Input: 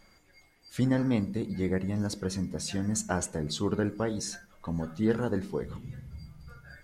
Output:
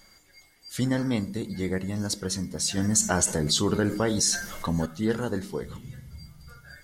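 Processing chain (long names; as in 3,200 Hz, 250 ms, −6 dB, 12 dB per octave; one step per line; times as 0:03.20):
high-shelf EQ 2,600 Hz +11 dB
notch filter 2,500 Hz, Q 9.2
0:02.77–0:04.86: envelope flattener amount 50%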